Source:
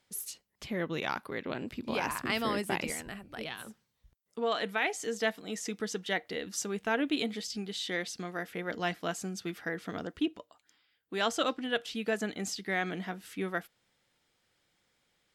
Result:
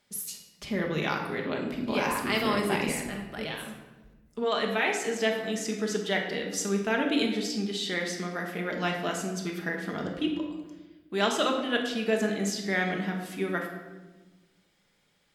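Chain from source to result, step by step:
rectangular room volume 700 cubic metres, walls mixed, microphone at 1.3 metres
level +2 dB

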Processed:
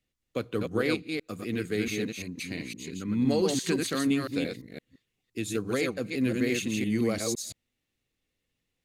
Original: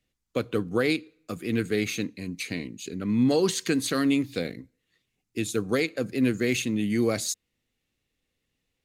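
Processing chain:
delay that plays each chunk backwards 171 ms, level −3.5 dB
0:02.78–0:03.20: parametric band 640 Hz −12 dB 0.4 octaves
level −4 dB

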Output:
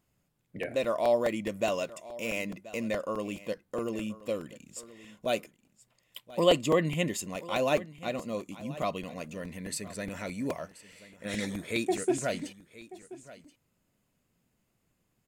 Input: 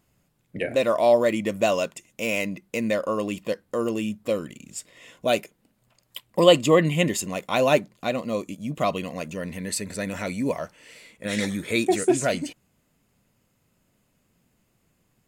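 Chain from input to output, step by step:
single-tap delay 1,030 ms −18 dB
regular buffer underruns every 0.21 s, samples 128, repeat, from 0:00.63
level −7.5 dB

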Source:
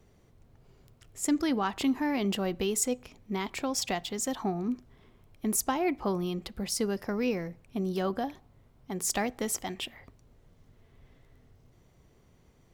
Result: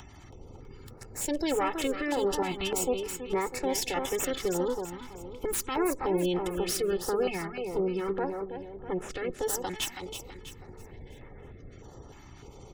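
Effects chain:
lower of the sound and its delayed copy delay 2.3 ms
gate on every frequency bin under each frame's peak −30 dB strong
low-shelf EQ 150 Hz −5 dB
in parallel at +0.5 dB: upward compression, threshold −35 dBFS
on the sum: brickwall limiter −20.5 dBFS, peak gain reduction 11 dB
0:07.65–0:09.35: head-to-tape spacing loss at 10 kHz 21 dB
on a send: repeating echo 325 ms, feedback 41%, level −7 dB
on the sum: notch on a step sequencer 3.3 Hz 480–4,400 Hz

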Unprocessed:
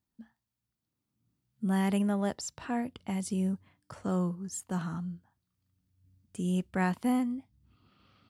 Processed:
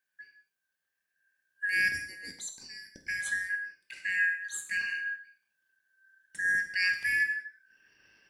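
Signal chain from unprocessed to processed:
band-splitting scrambler in four parts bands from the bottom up 3142
0:01.88–0:03.07: drawn EQ curve 110 Hz 0 dB, 280 Hz +6 dB, 2,800 Hz −23 dB, 4,200 Hz −1 dB
convolution reverb, pre-delay 3 ms, DRR 4 dB

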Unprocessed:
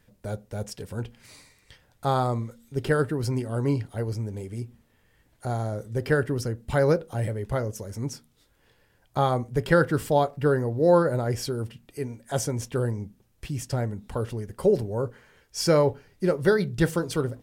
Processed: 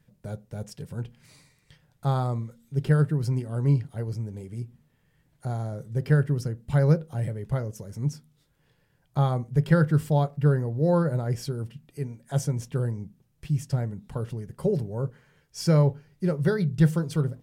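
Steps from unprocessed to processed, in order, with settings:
parametric band 150 Hz +15 dB 0.54 octaves
level −6 dB

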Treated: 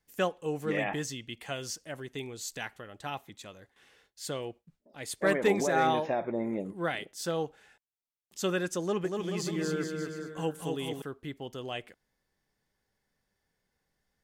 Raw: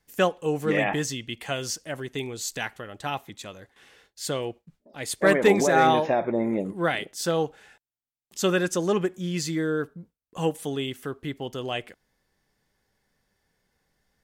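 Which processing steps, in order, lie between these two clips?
0:08.80–0:11.02: bouncing-ball delay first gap 240 ms, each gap 0.8×, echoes 5
level −7 dB

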